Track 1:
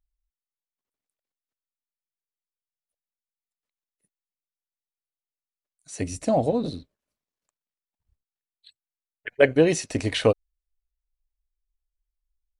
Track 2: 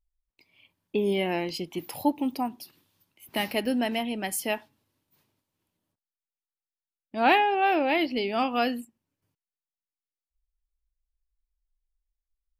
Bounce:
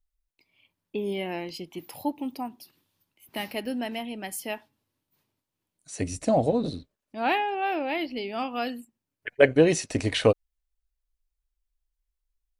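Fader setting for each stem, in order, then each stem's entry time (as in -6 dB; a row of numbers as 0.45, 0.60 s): -0.5, -4.5 dB; 0.00, 0.00 s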